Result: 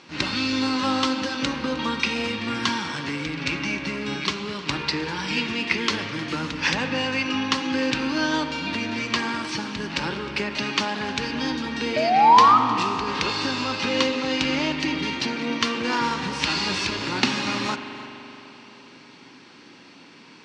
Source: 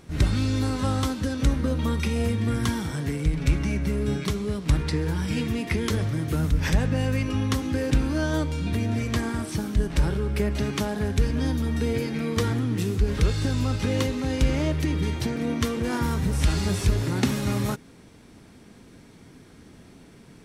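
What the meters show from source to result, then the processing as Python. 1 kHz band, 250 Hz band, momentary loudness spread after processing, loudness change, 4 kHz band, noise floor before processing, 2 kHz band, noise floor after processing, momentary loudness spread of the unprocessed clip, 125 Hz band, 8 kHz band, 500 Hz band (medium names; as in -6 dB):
+14.5 dB, -0.5 dB, 6 LU, +2.0 dB, +10.0 dB, -50 dBFS, +9.0 dB, -48 dBFS, 3 LU, -12.5 dB, +1.0 dB, +0.5 dB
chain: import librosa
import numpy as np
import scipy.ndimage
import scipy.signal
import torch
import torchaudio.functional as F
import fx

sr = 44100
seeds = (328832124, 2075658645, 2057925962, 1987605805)

p1 = fx.spec_paint(x, sr, seeds[0], shape='rise', start_s=11.96, length_s=0.62, low_hz=600.0, high_hz=1300.0, level_db=-21.0)
p2 = fx.cabinet(p1, sr, low_hz=350.0, low_slope=12, high_hz=6000.0, hz=(430.0, 660.0, 960.0, 2700.0, 4500.0), db=(-8, -8, 4, 7, 6))
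p3 = p2 + fx.echo_single(p2, sr, ms=309, db=-19.5, dry=0)
p4 = fx.rev_spring(p3, sr, rt60_s=3.7, pass_ms=(42,), chirp_ms=50, drr_db=8.0)
y = F.gain(torch.from_numpy(p4), 6.0).numpy()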